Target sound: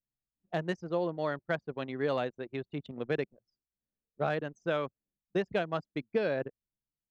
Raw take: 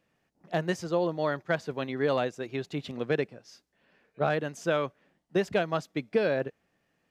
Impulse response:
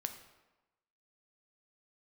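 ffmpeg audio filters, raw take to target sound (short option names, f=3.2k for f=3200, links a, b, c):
-af "anlmdn=1.58,volume=-4dB"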